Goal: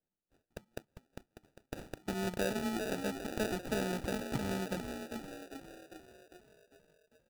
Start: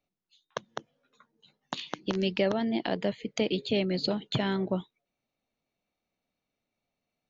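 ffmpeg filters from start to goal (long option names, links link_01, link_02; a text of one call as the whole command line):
ffmpeg -i in.wav -filter_complex "[0:a]asplit=8[link_01][link_02][link_03][link_04][link_05][link_06][link_07][link_08];[link_02]adelay=400,afreqshift=45,volume=-7dB[link_09];[link_03]adelay=800,afreqshift=90,volume=-12.2dB[link_10];[link_04]adelay=1200,afreqshift=135,volume=-17.4dB[link_11];[link_05]adelay=1600,afreqshift=180,volume=-22.6dB[link_12];[link_06]adelay=2000,afreqshift=225,volume=-27.8dB[link_13];[link_07]adelay=2400,afreqshift=270,volume=-33dB[link_14];[link_08]adelay=2800,afreqshift=315,volume=-38.2dB[link_15];[link_01][link_09][link_10][link_11][link_12][link_13][link_14][link_15]amix=inputs=8:normalize=0,acrusher=samples=41:mix=1:aa=0.000001,volume=-7.5dB" out.wav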